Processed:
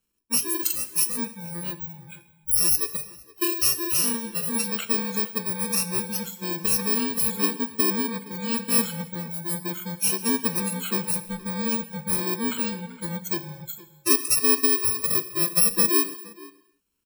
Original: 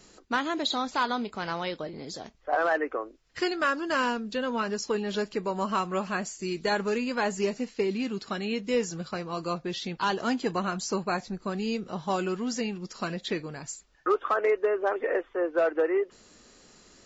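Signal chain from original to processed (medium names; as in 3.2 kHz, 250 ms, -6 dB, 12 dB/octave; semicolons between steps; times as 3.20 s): bit-reversed sample order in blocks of 64 samples; spectral noise reduction 28 dB; echo from a far wall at 80 m, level -18 dB; gated-style reverb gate 330 ms falling, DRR 11 dB; trim +5 dB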